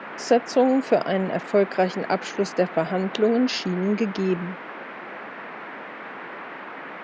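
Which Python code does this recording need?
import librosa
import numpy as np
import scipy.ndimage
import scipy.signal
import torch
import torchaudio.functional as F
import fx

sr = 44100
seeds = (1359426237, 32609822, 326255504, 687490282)

y = fx.noise_reduce(x, sr, print_start_s=4.56, print_end_s=5.06, reduce_db=30.0)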